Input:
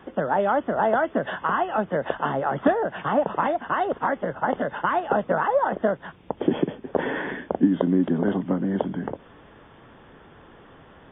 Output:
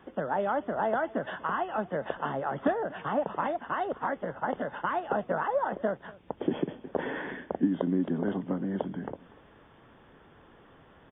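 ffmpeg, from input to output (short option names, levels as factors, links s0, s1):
-af "aecho=1:1:241:0.0841,volume=0.447"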